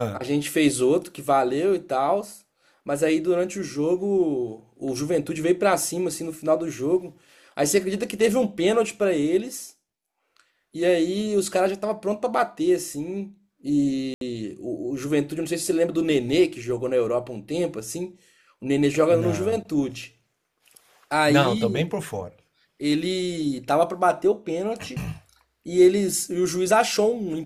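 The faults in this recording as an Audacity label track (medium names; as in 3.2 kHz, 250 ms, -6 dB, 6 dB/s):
14.140000	14.210000	dropout 72 ms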